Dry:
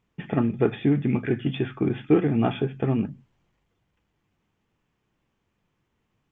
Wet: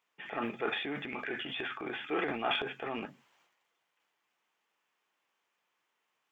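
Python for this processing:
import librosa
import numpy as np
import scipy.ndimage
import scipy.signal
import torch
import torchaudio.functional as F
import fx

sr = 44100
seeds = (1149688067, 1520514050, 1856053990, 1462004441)

y = scipy.signal.sosfilt(scipy.signal.butter(2, 790.0, 'highpass', fs=sr, output='sos'), x)
y = fx.transient(y, sr, attack_db=-4, sustain_db=9)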